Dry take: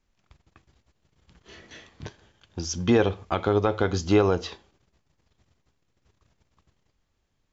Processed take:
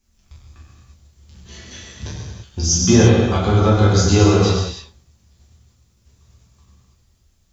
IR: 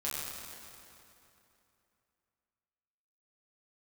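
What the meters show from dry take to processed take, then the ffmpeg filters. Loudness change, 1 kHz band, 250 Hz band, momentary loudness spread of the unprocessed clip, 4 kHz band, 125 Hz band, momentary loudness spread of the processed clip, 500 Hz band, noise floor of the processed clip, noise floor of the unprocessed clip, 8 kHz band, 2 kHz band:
+9.0 dB, +6.5 dB, +9.5 dB, 20 LU, +12.5 dB, +15.0 dB, 20 LU, +5.5 dB, −60 dBFS, −73 dBFS, can't be measured, +6.5 dB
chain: -filter_complex "[0:a]bass=frequency=250:gain=9,treble=frequency=4000:gain=14[link_01];[1:a]atrim=start_sample=2205,afade=type=out:start_time=0.41:duration=0.01,atrim=end_sample=18522[link_02];[link_01][link_02]afir=irnorm=-1:irlink=0,volume=1.5dB"

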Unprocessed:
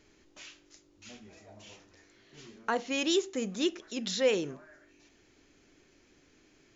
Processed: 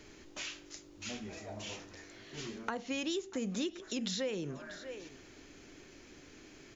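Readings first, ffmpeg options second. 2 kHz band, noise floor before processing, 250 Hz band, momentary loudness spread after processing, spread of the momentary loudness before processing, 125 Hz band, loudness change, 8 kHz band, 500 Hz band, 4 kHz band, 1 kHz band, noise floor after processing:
−5.0 dB, −65 dBFS, −3.5 dB, 19 LU, 22 LU, +2.5 dB, −9.0 dB, can't be measured, −8.0 dB, −5.0 dB, −6.5 dB, −56 dBFS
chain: -filter_complex "[0:a]asplit=2[link_01][link_02];[link_02]acompressor=threshold=-43dB:ratio=6,volume=0.5dB[link_03];[link_01][link_03]amix=inputs=2:normalize=0,aecho=1:1:638:0.075,acrossover=split=170[link_04][link_05];[link_05]acompressor=threshold=-38dB:ratio=5[link_06];[link_04][link_06]amix=inputs=2:normalize=0,volume=2dB"

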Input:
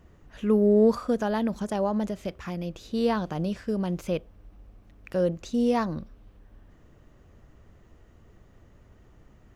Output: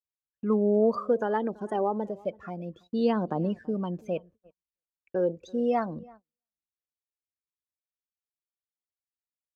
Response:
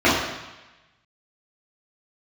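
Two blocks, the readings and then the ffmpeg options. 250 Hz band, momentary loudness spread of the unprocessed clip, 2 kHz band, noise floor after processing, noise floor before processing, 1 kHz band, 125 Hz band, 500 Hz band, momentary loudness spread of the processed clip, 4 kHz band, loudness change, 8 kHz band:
−3.5 dB, 13 LU, −3.0 dB, below −85 dBFS, −57 dBFS, +1.0 dB, −4.0 dB, −1.5 dB, 12 LU, −7.5 dB, −2.0 dB, can't be measured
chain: -filter_complex "[0:a]acrossover=split=480[link_01][link_02];[link_02]acompressor=threshold=-25dB:ratio=6[link_03];[link_01][link_03]amix=inputs=2:normalize=0,afftdn=noise_reduction=23:noise_floor=-37,aphaser=in_gain=1:out_gain=1:delay=2.8:decay=0.45:speed=0.3:type=triangular,highpass=220,asplit=2[link_04][link_05];[link_05]adelay=332,lowpass=frequency=2500:poles=1,volume=-24dB,asplit=2[link_06][link_07];[link_07]adelay=332,lowpass=frequency=2500:poles=1,volume=0.18[link_08];[link_06][link_08]amix=inputs=2:normalize=0[link_09];[link_04][link_09]amix=inputs=2:normalize=0,agate=range=-38dB:threshold=-51dB:ratio=16:detection=peak"

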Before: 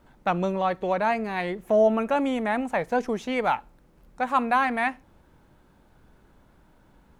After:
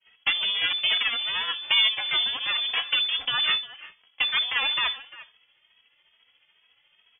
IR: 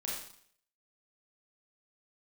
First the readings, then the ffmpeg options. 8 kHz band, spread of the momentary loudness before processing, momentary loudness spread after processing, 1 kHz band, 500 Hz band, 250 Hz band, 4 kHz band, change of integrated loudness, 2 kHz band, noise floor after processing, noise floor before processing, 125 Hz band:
can't be measured, 7 LU, 7 LU, −11.5 dB, −24.0 dB, below −25 dB, +23.0 dB, +2.0 dB, +4.0 dB, −67 dBFS, −59 dBFS, below −15 dB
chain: -filter_complex "[0:a]aemphasis=mode=production:type=riaa,agate=range=-33dB:threshold=-52dB:ratio=3:detection=peak,highpass=frequency=150:width=0.5412,highpass=frequency=150:width=1.3066,lowshelf=frequency=410:gain=8.5,acompressor=threshold=-30dB:ratio=3,aeval=exprs='0.2*(cos(1*acos(clip(val(0)/0.2,-1,1)))-cos(1*PI/2))+0.0631*(cos(8*acos(clip(val(0)/0.2,-1,1)))-cos(8*PI/2))':channel_layout=same,acrusher=bits=4:mode=log:mix=0:aa=0.000001,tremolo=f=14:d=0.48,asplit=2[link_01][link_02];[link_02]adelay=350,highpass=300,lowpass=3400,asoftclip=type=hard:threshold=-26.5dB,volume=-14dB[link_03];[link_01][link_03]amix=inputs=2:normalize=0,asplit=2[link_04][link_05];[1:a]atrim=start_sample=2205,atrim=end_sample=4410[link_06];[link_05][link_06]afir=irnorm=-1:irlink=0,volume=-18dB[link_07];[link_04][link_07]amix=inputs=2:normalize=0,lowpass=frequency=3000:width_type=q:width=0.5098,lowpass=frequency=3000:width_type=q:width=0.6013,lowpass=frequency=3000:width_type=q:width=0.9,lowpass=frequency=3000:width_type=q:width=2.563,afreqshift=-3500,asplit=2[link_08][link_09];[link_09]adelay=2.8,afreqshift=2.3[link_10];[link_08][link_10]amix=inputs=2:normalize=1,volume=5.5dB"

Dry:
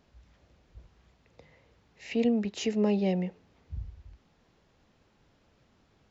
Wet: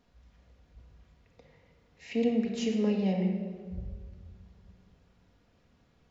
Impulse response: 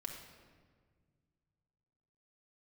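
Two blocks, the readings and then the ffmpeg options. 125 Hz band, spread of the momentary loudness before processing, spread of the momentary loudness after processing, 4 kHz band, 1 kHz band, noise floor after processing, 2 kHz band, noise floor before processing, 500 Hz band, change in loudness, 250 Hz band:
+0.5 dB, 18 LU, 16 LU, −2.0 dB, −2.5 dB, −67 dBFS, −2.5 dB, −67 dBFS, −1.5 dB, −1.0 dB, 0.0 dB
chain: -filter_complex "[1:a]atrim=start_sample=2205[link_01];[0:a][link_01]afir=irnorm=-1:irlink=0"

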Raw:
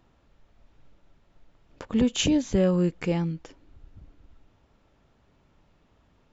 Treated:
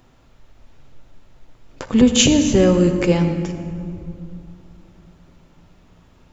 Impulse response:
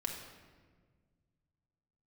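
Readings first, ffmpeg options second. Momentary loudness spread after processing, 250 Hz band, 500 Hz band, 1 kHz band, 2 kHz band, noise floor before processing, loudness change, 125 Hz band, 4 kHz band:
19 LU, +9.0 dB, +9.5 dB, +9.5 dB, +10.5 dB, −64 dBFS, +8.5 dB, +8.5 dB, +11.0 dB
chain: -filter_complex "[0:a]highshelf=frequency=6700:gain=10,asplit=2[link_01][link_02];[1:a]atrim=start_sample=2205,asetrate=23373,aresample=44100[link_03];[link_02][link_03]afir=irnorm=-1:irlink=0,volume=-3dB[link_04];[link_01][link_04]amix=inputs=2:normalize=0,volume=3dB"

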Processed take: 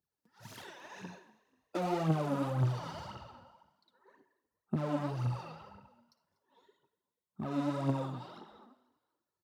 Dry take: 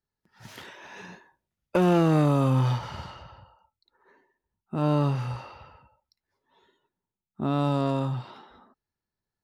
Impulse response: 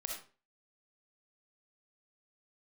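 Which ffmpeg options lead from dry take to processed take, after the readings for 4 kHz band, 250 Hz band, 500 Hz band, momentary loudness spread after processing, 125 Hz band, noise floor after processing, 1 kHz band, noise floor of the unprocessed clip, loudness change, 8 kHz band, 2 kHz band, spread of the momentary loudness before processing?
−8.5 dB, −10.0 dB, −10.0 dB, 19 LU, −9.5 dB, below −85 dBFS, −8.5 dB, below −85 dBFS, −10.0 dB, can't be measured, −8.5 dB, 23 LU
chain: -filter_complex "[0:a]asoftclip=type=tanh:threshold=-27dB,highpass=110,equalizer=frequency=2200:width_type=o:width=1.6:gain=-6,aphaser=in_gain=1:out_gain=1:delay=4.3:decay=0.68:speed=1.9:type=triangular,asplit=4[link_01][link_02][link_03][link_04];[link_02]adelay=243,afreqshift=38,volume=-20.5dB[link_05];[link_03]adelay=486,afreqshift=76,volume=-28.5dB[link_06];[link_04]adelay=729,afreqshift=114,volume=-36.4dB[link_07];[link_01][link_05][link_06][link_07]amix=inputs=4:normalize=0,asplit=2[link_08][link_09];[1:a]atrim=start_sample=2205[link_10];[link_09][link_10]afir=irnorm=-1:irlink=0,volume=-10dB[link_11];[link_08][link_11]amix=inputs=2:normalize=0,volume=-6dB"

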